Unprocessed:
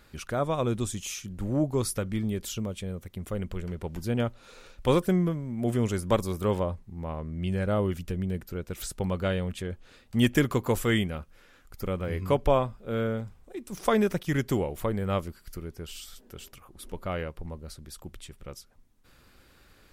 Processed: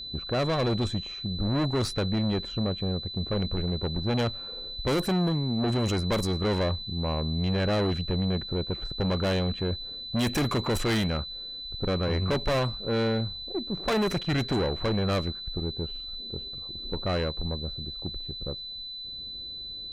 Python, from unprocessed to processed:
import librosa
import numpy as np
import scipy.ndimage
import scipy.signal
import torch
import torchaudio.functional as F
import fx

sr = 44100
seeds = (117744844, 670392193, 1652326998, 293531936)

y = fx.env_lowpass(x, sr, base_hz=410.0, full_db=-20.0)
y = fx.tube_stage(y, sr, drive_db=32.0, bias=0.4)
y = y + 10.0 ** (-45.0 / 20.0) * np.sin(2.0 * np.pi * 4000.0 * np.arange(len(y)) / sr)
y = y * 10.0 ** (9.0 / 20.0)